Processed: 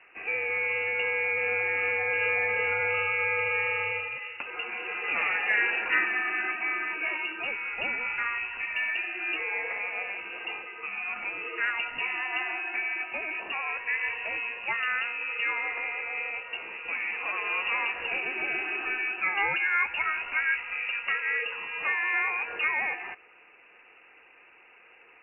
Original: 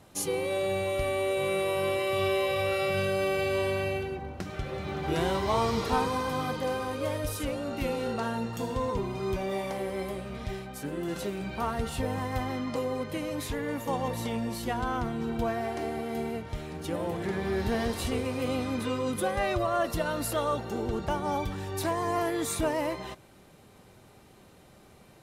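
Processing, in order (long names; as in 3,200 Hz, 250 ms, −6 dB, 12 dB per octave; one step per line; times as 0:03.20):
voice inversion scrambler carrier 2,800 Hz
three-way crossover with the lows and the highs turned down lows −17 dB, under 240 Hz, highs −18 dB, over 2,000 Hz
level +6.5 dB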